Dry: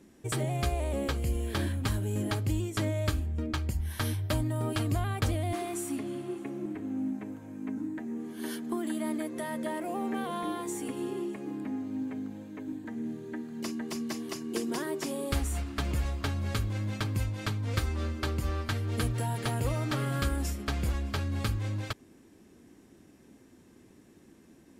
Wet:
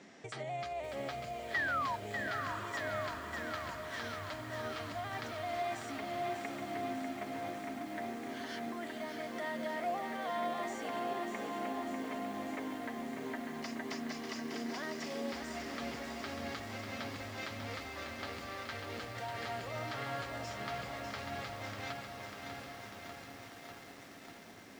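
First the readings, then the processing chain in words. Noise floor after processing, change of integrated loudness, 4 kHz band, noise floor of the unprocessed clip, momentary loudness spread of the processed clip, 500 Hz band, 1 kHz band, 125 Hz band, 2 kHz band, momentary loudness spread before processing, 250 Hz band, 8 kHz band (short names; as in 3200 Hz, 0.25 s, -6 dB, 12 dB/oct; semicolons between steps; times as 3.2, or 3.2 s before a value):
-52 dBFS, -7.0 dB, -4.5 dB, -58 dBFS, 8 LU, -3.5 dB, +0.5 dB, -18.0 dB, +1.0 dB, 7 LU, -9.0 dB, -10.0 dB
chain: high shelf 2900 Hz +6 dB; compressor, threshold -40 dBFS, peak gain reduction 16 dB; limiter -35 dBFS, peak gain reduction 9 dB; painted sound fall, 1.54–1.96, 900–2000 Hz -42 dBFS; speaker cabinet 200–5800 Hz, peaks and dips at 230 Hz -4 dB, 330 Hz -9 dB, 700 Hz +8 dB, 1300 Hz +4 dB, 2000 Hz +7 dB; on a send: diffused feedback echo 0.795 s, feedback 58%, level -8 dB; on the sum: lo-fi delay 0.595 s, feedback 80%, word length 10-bit, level -6 dB; gain +4 dB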